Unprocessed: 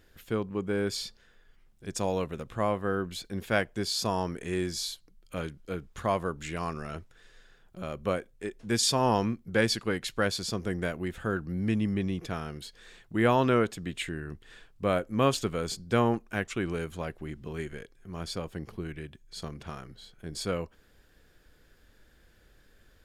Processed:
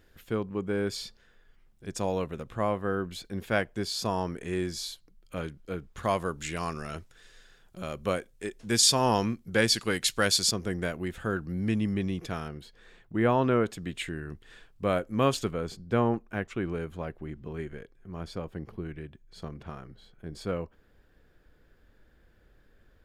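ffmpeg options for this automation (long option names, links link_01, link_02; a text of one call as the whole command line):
ffmpeg -i in.wav -af "asetnsamples=nb_out_samples=441:pad=0,asendcmd='6.03 equalizer g 6;9.76 equalizer g 12;10.51 equalizer g 1;12.48 equalizer g -11;13.66 equalizer g -1.5;15.51 equalizer g -12',equalizer=frequency=8600:width_type=o:width=2.8:gain=-3" out.wav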